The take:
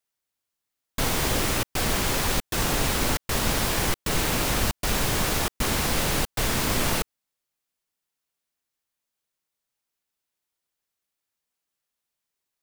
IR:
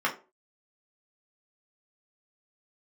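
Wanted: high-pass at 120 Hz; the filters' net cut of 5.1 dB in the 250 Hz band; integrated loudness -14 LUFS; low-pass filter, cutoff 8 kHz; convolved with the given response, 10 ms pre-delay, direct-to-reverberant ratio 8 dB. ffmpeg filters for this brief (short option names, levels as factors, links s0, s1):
-filter_complex "[0:a]highpass=120,lowpass=8000,equalizer=f=250:t=o:g=-6.5,asplit=2[s0][s1];[1:a]atrim=start_sample=2205,adelay=10[s2];[s1][s2]afir=irnorm=-1:irlink=0,volume=0.106[s3];[s0][s3]amix=inputs=2:normalize=0,volume=4.22"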